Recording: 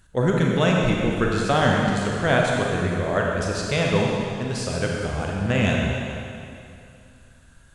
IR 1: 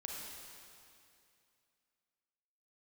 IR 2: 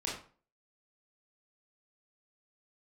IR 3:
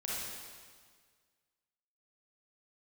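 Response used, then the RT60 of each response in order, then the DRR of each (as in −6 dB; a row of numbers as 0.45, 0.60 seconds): 1; 2.5, 0.40, 1.7 seconds; −2.0, −5.0, −7.0 decibels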